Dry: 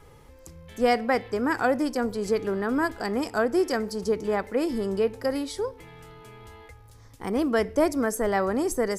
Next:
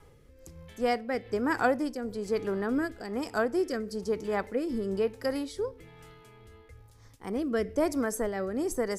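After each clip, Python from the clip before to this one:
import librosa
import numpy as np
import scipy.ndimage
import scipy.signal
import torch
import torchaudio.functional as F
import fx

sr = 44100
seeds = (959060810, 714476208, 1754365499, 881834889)

y = fx.rotary(x, sr, hz=1.1)
y = fx.am_noise(y, sr, seeds[0], hz=5.7, depth_pct=65)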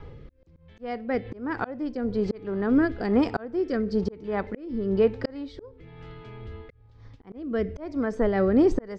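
y = scipy.signal.sosfilt(scipy.signal.butter(4, 4200.0, 'lowpass', fs=sr, output='sos'), x)
y = fx.low_shelf(y, sr, hz=390.0, db=7.5)
y = fx.auto_swell(y, sr, attack_ms=723.0)
y = y * 10.0 ** (7.5 / 20.0)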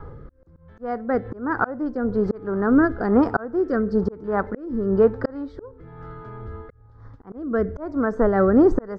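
y = fx.high_shelf_res(x, sr, hz=1900.0, db=-10.5, q=3.0)
y = y * 10.0 ** (4.0 / 20.0)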